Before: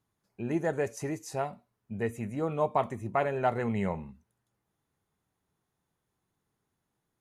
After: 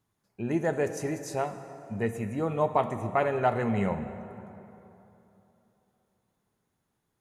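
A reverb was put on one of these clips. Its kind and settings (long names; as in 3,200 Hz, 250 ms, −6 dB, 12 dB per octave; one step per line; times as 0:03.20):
dense smooth reverb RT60 3.2 s, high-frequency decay 0.6×, DRR 9.5 dB
level +2 dB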